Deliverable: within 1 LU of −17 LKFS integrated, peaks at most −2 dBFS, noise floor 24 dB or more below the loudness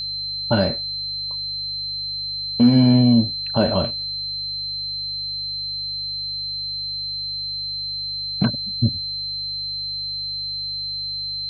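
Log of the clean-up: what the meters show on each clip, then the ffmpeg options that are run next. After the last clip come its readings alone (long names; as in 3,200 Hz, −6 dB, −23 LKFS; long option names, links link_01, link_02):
mains hum 50 Hz; hum harmonics up to 150 Hz; level of the hum −44 dBFS; interfering tone 4,100 Hz; level of the tone −25 dBFS; integrated loudness −22.0 LKFS; sample peak −5.0 dBFS; target loudness −17.0 LKFS
→ -af "bandreject=frequency=50:width_type=h:width=4,bandreject=frequency=100:width_type=h:width=4,bandreject=frequency=150:width_type=h:width=4"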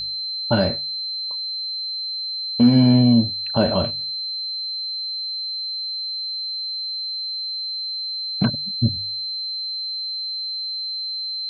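mains hum none found; interfering tone 4,100 Hz; level of the tone −25 dBFS
→ -af "bandreject=frequency=4100:width=30"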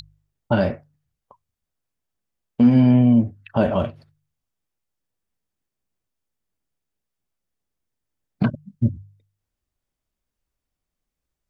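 interfering tone none found; integrated loudness −19.5 LKFS; sample peak −5.5 dBFS; target loudness −17.0 LKFS
→ -af "volume=2.5dB"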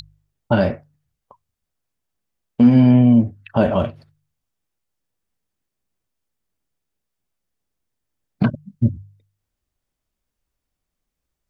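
integrated loudness −17.0 LKFS; sample peak −3.0 dBFS; background noise floor −81 dBFS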